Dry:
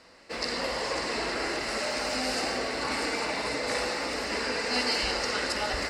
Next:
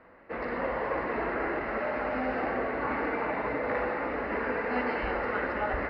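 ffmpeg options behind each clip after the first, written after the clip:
-af "lowpass=f=1.9k:w=0.5412,lowpass=f=1.9k:w=1.3066,volume=1.5dB"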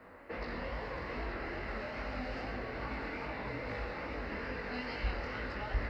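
-filter_complex "[0:a]bass=f=250:g=3,treble=f=4k:g=12,flanger=delay=18.5:depth=6.6:speed=2.4,acrossover=split=140|3000[a][b][c];[b]acompressor=threshold=-44dB:ratio=6[d];[a][d][c]amix=inputs=3:normalize=0,volume=3.5dB"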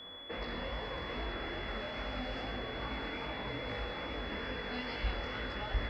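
-af "aeval=exprs='val(0)+0.00447*sin(2*PI*3400*n/s)':c=same"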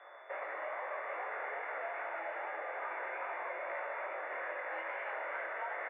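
-af "aecho=1:1:409:0.282,highpass=f=450:t=q:w=0.5412,highpass=f=450:t=q:w=1.307,lowpass=f=2.1k:t=q:w=0.5176,lowpass=f=2.1k:t=q:w=0.7071,lowpass=f=2.1k:t=q:w=1.932,afreqshift=79,volume=2.5dB"

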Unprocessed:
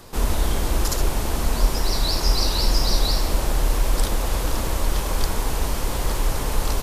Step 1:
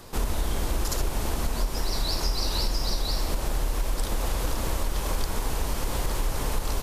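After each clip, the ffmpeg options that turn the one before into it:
-af "acompressor=threshold=-20dB:ratio=6,volume=-1.5dB"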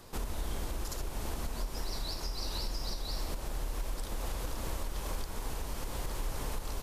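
-af "alimiter=limit=-18.5dB:level=0:latency=1:release=446,volume=-7dB"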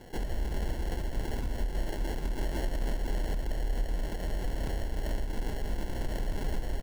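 -filter_complex "[0:a]acrossover=split=110[a][b];[a]aecho=1:1:161:0.631[c];[b]acrusher=samples=36:mix=1:aa=0.000001[d];[c][d]amix=inputs=2:normalize=0,volume=3dB"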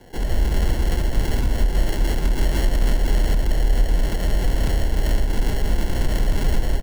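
-filter_complex "[0:a]dynaudnorm=f=130:g=3:m=11dB,acrossover=split=200|1200[a][b][c];[b]asoftclip=type=tanh:threshold=-30.5dB[d];[a][d][c]amix=inputs=3:normalize=0,volume=2dB"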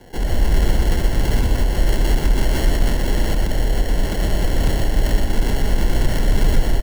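-af "aecho=1:1:123:0.562,volume=2.5dB"

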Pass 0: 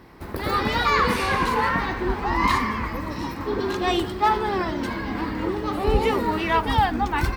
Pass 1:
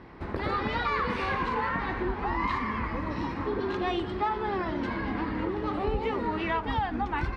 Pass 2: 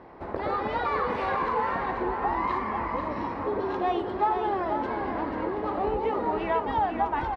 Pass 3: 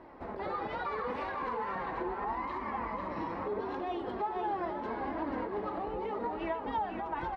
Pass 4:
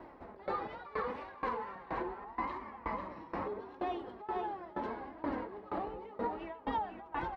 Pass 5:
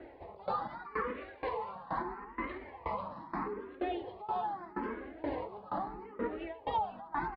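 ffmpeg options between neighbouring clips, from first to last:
-af "lowpass=3.2k,acompressor=threshold=-28dB:ratio=3"
-af "equalizer=f=660:t=o:w=1.9:g=14,aecho=1:1:490:0.473,volume=-7.5dB"
-af "alimiter=limit=-23.5dB:level=0:latency=1:release=104,flanger=delay=3:depth=3.3:regen=44:speed=0.77:shape=triangular"
-af "aeval=exprs='val(0)*pow(10,-21*if(lt(mod(2.1*n/s,1),2*abs(2.1)/1000),1-mod(2.1*n/s,1)/(2*abs(2.1)/1000),(mod(2.1*n/s,1)-2*abs(2.1)/1000)/(1-2*abs(2.1)/1000))/20)':c=same,volume=3dB"
-filter_complex "[0:a]aresample=11025,aresample=44100,asplit=2[a][b];[b]afreqshift=0.78[c];[a][c]amix=inputs=2:normalize=1,volume=4dB"

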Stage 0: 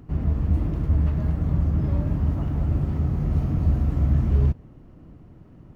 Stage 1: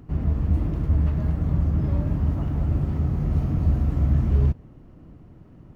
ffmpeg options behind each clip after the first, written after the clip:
-af anull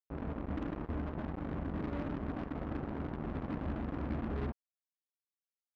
-af "lowpass=1.3k,lowshelf=f=180:t=q:w=1.5:g=-11,acrusher=bits=4:mix=0:aa=0.5,volume=-8dB"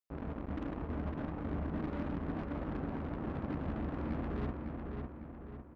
-filter_complex "[0:a]asplit=2[a][b];[b]adelay=553,lowpass=f=3.2k:p=1,volume=-4dB,asplit=2[c][d];[d]adelay=553,lowpass=f=3.2k:p=1,volume=0.5,asplit=2[e][f];[f]adelay=553,lowpass=f=3.2k:p=1,volume=0.5,asplit=2[g][h];[h]adelay=553,lowpass=f=3.2k:p=1,volume=0.5,asplit=2[i][j];[j]adelay=553,lowpass=f=3.2k:p=1,volume=0.5,asplit=2[k][l];[l]adelay=553,lowpass=f=3.2k:p=1,volume=0.5[m];[a][c][e][g][i][k][m]amix=inputs=7:normalize=0,volume=-1.5dB"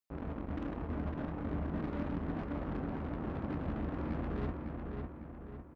-filter_complex "[0:a]asplit=2[a][b];[b]adelay=24,volume=-12dB[c];[a][c]amix=inputs=2:normalize=0"

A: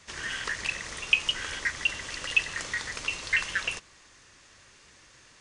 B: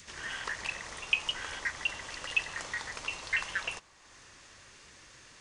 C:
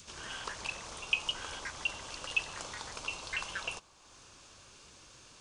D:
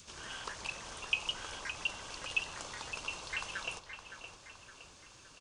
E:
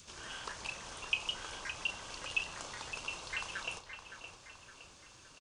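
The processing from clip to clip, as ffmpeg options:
-af "adynamicequalizer=threshold=0.00355:dfrequency=830:dqfactor=1.3:tfrequency=830:tqfactor=1.3:attack=5:release=100:ratio=0.375:range=4:mode=boostabove:tftype=bell,acompressor=mode=upward:threshold=-40dB:ratio=2.5,volume=-6dB"
-af "equalizer=f=1.9k:t=o:w=0.34:g=-14.5"
-filter_complex "[0:a]asplit=2[a][b];[b]adelay=565,lowpass=f=4.7k:p=1,volume=-9dB,asplit=2[c][d];[d]adelay=565,lowpass=f=4.7k:p=1,volume=0.51,asplit=2[e][f];[f]adelay=565,lowpass=f=4.7k:p=1,volume=0.51,asplit=2[g][h];[h]adelay=565,lowpass=f=4.7k:p=1,volume=0.51,asplit=2[i][j];[j]adelay=565,lowpass=f=4.7k:p=1,volume=0.51,asplit=2[k][l];[l]adelay=565,lowpass=f=4.7k:p=1,volume=0.51[m];[a][c][e][g][i][k][m]amix=inputs=7:normalize=0,volume=-2dB"
-filter_complex "[0:a]asplit=2[a][b];[b]adelay=33,volume=-11dB[c];[a][c]amix=inputs=2:normalize=0,volume=-1dB"

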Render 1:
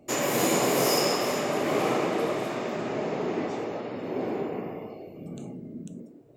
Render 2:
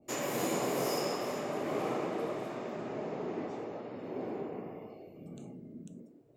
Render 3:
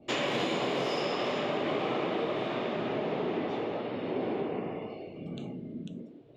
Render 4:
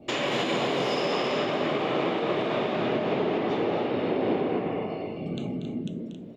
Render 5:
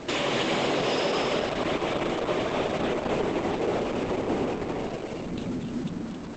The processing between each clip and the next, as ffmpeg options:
-af "adynamicequalizer=threshold=0.00708:dfrequency=1600:dqfactor=0.7:tfrequency=1600:tqfactor=0.7:attack=5:release=100:ratio=0.375:range=2.5:mode=cutabove:tftype=highshelf,volume=-8dB"
-af "acompressor=threshold=-35dB:ratio=6,lowpass=f=3.4k:t=q:w=3.1,volume=7.5dB"
-filter_complex "[0:a]alimiter=level_in=0.5dB:limit=-24dB:level=0:latency=1:release=140,volume=-0.5dB,asplit=2[a][b];[b]aecho=0:1:236.2|271.1:0.316|0.355[c];[a][c]amix=inputs=2:normalize=0,volume=6.5dB"
-af "aeval=exprs='val(0)+0.5*0.0251*sgn(val(0))':c=same,volume=-1dB" -ar 48000 -c:a libopus -b:a 10k

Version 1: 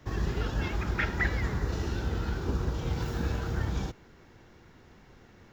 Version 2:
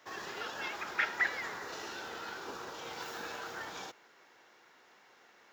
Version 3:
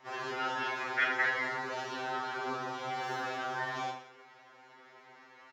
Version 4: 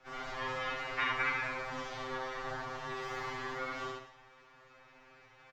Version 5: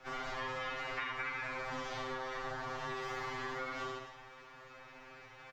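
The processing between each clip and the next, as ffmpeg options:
-af "highpass=670"
-filter_complex "[0:a]aemphasis=mode=reproduction:type=75fm,asplit=2[a][b];[b]aecho=0:1:30|67.5|114.4|173|246.2:0.631|0.398|0.251|0.158|0.1[c];[a][c]amix=inputs=2:normalize=0,afftfilt=real='re*2.45*eq(mod(b,6),0)':imag='im*2.45*eq(mod(b,6),0)':win_size=2048:overlap=0.75,volume=6.5dB"
-af "highpass=210,aeval=exprs='val(0)*sin(2*PI*380*n/s)':c=same,aecho=1:1:19|69:0.398|0.668,volume=-2dB"
-af "acompressor=threshold=-43dB:ratio=5,volume=5.5dB"

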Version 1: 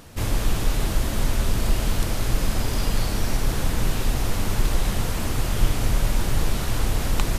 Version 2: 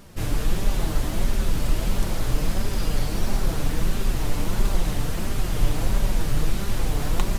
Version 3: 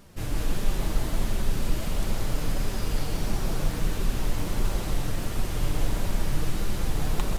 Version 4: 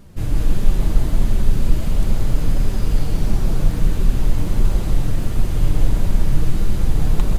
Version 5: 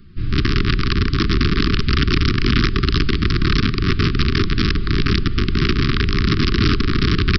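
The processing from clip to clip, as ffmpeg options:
-filter_complex "[0:a]asplit=2[a][b];[b]acrusher=samples=27:mix=1:aa=0.000001:lfo=1:lforange=27:lforate=0.81,volume=-5.5dB[c];[a][c]amix=inputs=2:normalize=0,flanger=delay=5:depth=1.9:regen=47:speed=1.5:shape=sinusoidal"
-af "aecho=1:1:128.3|180.8:0.316|0.708,volume=-5dB"
-af "lowshelf=f=330:g=10.5,bandreject=f=5.5k:w=28"
-af "aresample=11025,aeval=exprs='(mod(3.55*val(0)+1,2)-1)/3.55':c=same,aresample=44100,asuperstop=centerf=680:order=20:qfactor=1"

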